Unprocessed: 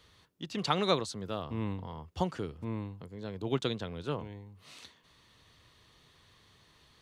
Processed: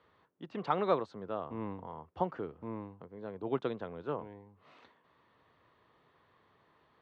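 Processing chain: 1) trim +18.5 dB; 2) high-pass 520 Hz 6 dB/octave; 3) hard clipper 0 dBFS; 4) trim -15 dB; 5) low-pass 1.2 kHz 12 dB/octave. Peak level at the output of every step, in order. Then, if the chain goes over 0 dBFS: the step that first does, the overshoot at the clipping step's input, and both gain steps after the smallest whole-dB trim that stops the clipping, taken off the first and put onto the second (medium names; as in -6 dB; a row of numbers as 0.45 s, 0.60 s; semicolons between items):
+6.0 dBFS, +5.0 dBFS, 0.0 dBFS, -15.0 dBFS, -15.5 dBFS; step 1, 5.0 dB; step 1 +13.5 dB, step 4 -10 dB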